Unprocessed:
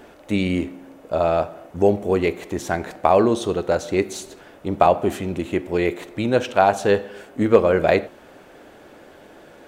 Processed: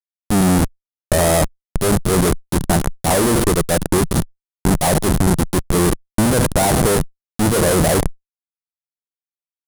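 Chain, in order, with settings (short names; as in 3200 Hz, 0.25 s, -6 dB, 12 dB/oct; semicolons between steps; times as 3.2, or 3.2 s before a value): Schmitt trigger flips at -25 dBFS; fifteen-band EQ 160 Hz +6 dB, 2500 Hz -7 dB, 10000 Hz +12 dB; added harmonics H 6 -15 dB, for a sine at -10.5 dBFS; gain +5 dB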